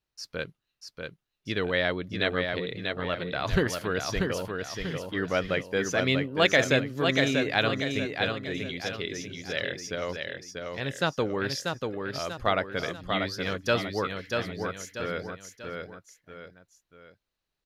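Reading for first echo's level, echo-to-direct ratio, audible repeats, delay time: -4.5 dB, -3.5 dB, 3, 0.639 s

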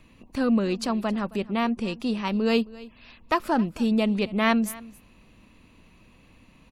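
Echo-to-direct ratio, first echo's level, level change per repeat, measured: -20.5 dB, -20.5 dB, no steady repeat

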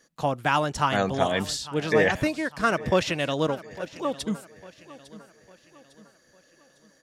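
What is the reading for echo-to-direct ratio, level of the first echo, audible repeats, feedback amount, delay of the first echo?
-17.0 dB, -18.0 dB, 3, 43%, 0.853 s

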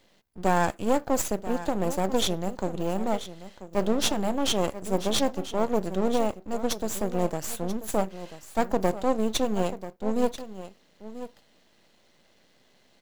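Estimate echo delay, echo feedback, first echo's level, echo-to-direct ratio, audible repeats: 0.987 s, no steady repeat, -13.5 dB, -13.5 dB, 1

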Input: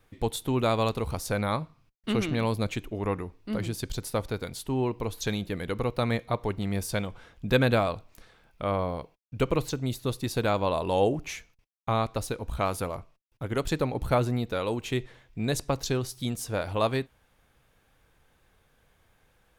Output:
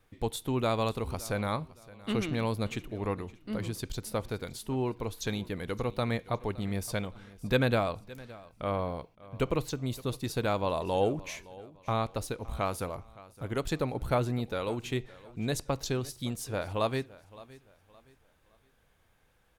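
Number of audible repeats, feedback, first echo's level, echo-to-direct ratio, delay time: 2, 33%, -20.0 dB, -19.5 dB, 0.566 s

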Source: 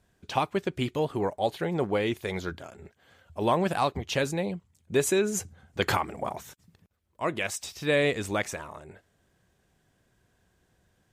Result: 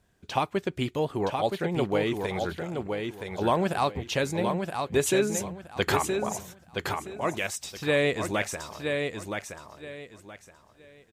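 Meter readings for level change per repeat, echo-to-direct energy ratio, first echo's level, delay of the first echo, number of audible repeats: -12.5 dB, -4.5 dB, -5.0 dB, 0.971 s, 3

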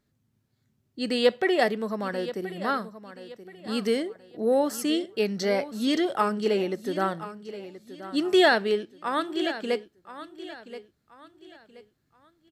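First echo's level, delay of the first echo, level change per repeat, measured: -14.0 dB, 1.027 s, -9.5 dB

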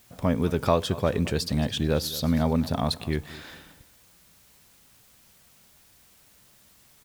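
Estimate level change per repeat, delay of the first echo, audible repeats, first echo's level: -11.0 dB, 0.221 s, 2, -18.0 dB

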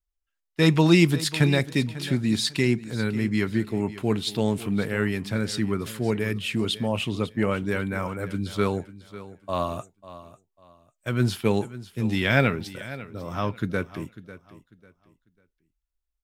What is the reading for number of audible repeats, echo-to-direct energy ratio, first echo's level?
2, -15.5 dB, -16.0 dB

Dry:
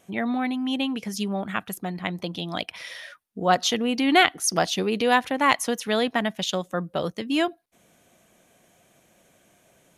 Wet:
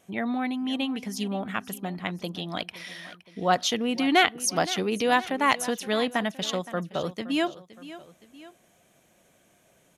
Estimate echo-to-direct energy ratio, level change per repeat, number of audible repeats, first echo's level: -15.5 dB, -5.5 dB, 2, -16.5 dB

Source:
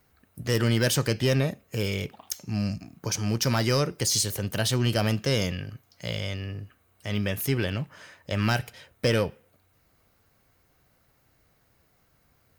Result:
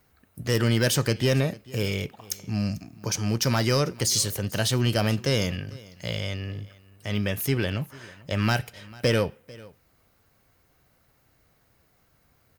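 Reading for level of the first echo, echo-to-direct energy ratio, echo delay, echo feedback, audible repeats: -22.0 dB, -22.0 dB, 0.445 s, no steady repeat, 1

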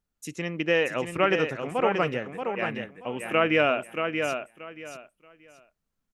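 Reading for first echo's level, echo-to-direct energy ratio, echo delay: -6.0 dB, -6.0 dB, 0.63 s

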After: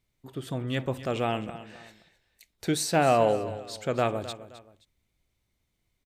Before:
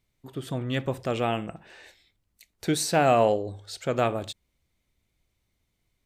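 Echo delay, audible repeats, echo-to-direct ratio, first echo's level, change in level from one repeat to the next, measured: 0.262 s, 2, -14.0 dB, -14.5 dB, -9.5 dB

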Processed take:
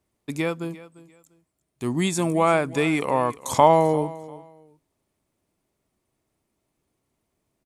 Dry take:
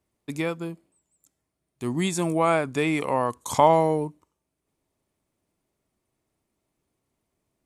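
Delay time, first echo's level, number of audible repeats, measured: 0.347 s, -18.5 dB, 2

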